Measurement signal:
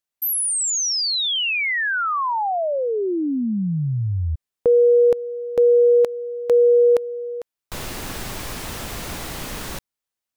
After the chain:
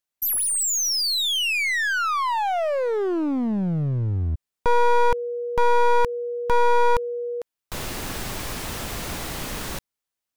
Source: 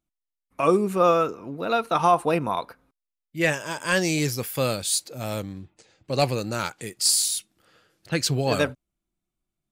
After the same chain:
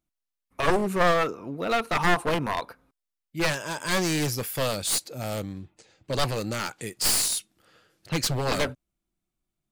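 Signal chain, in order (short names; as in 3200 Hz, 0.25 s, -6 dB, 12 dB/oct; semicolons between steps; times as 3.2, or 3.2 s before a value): one-sided fold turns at -21.5 dBFS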